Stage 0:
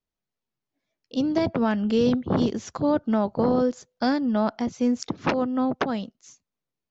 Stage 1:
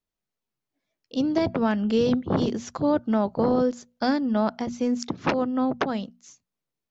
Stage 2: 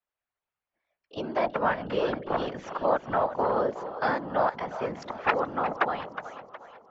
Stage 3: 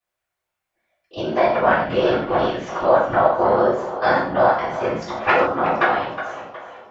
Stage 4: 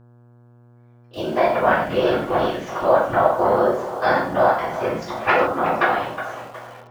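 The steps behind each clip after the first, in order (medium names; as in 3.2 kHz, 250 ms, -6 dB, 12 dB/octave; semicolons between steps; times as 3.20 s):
hum notches 60/120/180/240 Hz
three-band isolator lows -20 dB, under 590 Hz, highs -23 dB, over 2.7 kHz; two-band feedback delay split 470 Hz, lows 237 ms, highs 365 ms, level -12.5 dB; whisper effect; trim +4.5 dB
gated-style reverb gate 180 ms falling, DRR -7.5 dB; trim +1.5 dB
in parallel at -10.5 dB: bit crusher 6-bit; on the sum: mains buzz 120 Hz, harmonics 14, -47 dBFS -8 dB/octave; trim -3 dB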